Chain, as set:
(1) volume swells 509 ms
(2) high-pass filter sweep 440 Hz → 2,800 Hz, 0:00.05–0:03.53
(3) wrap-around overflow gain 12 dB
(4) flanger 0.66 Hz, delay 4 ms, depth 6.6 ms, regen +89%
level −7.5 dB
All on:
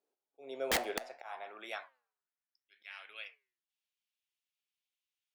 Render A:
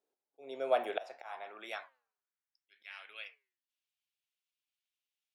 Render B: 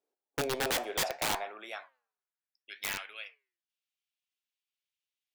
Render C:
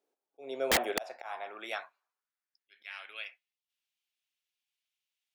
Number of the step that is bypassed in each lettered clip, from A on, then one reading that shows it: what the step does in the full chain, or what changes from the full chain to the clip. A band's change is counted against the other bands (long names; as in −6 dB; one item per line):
3, change in crest factor +5.0 dB
1, change in crest factor −5.5 dB
4, change in momentary loudness spread −3 LU